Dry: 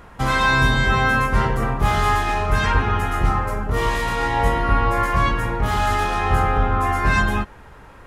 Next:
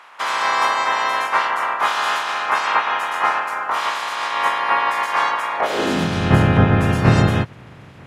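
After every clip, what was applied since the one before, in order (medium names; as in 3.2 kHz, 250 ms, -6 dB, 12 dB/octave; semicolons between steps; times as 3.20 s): spectral peaks clipped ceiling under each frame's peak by 28 dB; high-pass sweep 1 kHz -> 120 Hz, 5.52–6.15 s; RIAA curve playback; trim -2 dB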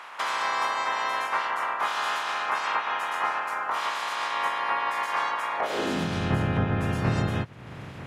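compression 2:1, threshold -35 dBFS, peak gain reduction 14.5 dB; trim +2 dB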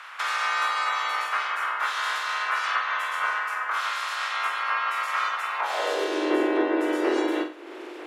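frequency shift +220 Hz; on a send: flutter echo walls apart 7.8 m, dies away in 0.37 s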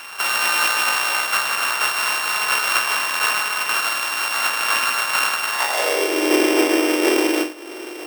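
sorted samples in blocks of 16 samples; trim +6.5 dB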